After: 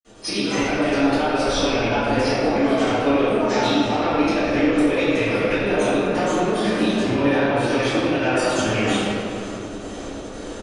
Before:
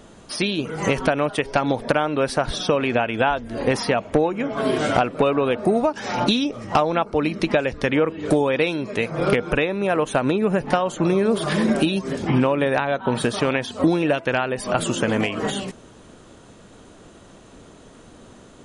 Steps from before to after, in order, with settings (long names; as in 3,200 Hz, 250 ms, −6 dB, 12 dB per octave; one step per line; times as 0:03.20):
mains-hum notches 50/100/150/200/250 Hz
ambience of single reflections 54 ms −6.5 dB, 64 ms −12.5 dB
gate pattern "x.x.x.xxxxx" 179 BPM −12 dB
soft clipping −11.5 dBFS, distortion −18 dB
automatic gain control gain up to 8 dB
dynamic equaliser 460 Hz, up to −5 dB, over −27 dBFS, Q 1.5
downward compressor 4 to 1, threshold −25 dBFS, peak gain reduction 13 dB
phase-vocoder stretch with locked phases 0.57×
graphic EQ with 15 bands 160 Hz −11 dB, 1,000 Hz −5 dB, 6,300 Hz +6 dB
convolution reverb RT60 2.6 s, pre-delay 47 ms